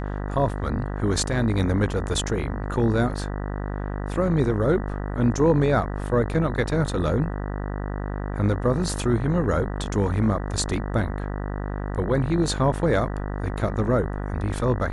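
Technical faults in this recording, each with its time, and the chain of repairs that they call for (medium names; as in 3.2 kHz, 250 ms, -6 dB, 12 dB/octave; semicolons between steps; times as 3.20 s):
buzz 50 Hz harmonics 39 -29 dBFS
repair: de-hum 50 Hz, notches 39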